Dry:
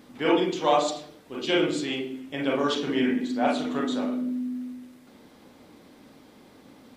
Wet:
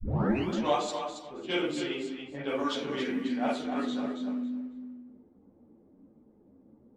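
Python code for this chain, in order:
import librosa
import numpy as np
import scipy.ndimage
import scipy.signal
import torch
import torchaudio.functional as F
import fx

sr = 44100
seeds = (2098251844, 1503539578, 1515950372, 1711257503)

p1 = fx.tape_start_head(x, sr, length_s=0.48)
p2 = fx.env_lowpass(p1, sr, base_hz=370.0, full_db=-21.5)
p3 = p2 + fx.echo_feedback(p2, sr, ms=276, feedback_pct=20, wet_db=-7.5, dry=0)
p4 = fx.ensemble(p3, sr)
y = p4 * librosa.db_to_amplitude(-3.0)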